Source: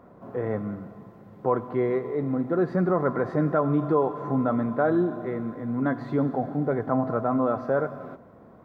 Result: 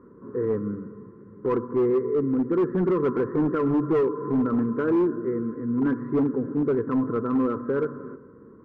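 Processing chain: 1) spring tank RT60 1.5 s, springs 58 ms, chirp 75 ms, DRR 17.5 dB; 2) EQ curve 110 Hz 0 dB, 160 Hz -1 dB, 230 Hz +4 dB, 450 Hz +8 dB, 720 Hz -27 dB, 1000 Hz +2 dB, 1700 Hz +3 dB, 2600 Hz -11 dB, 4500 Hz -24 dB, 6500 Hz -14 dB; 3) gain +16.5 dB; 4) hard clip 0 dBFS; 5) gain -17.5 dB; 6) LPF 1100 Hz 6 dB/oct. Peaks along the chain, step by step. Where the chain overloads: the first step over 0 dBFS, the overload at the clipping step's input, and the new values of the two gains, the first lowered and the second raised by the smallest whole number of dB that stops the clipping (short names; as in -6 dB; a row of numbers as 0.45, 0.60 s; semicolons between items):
-11.0, -7.0, +9.5, 0.0, -17.5, -17.5 dBFS; step 3, 9.5 dB; step 3 +6.5 dB, step 5 -7.5 dB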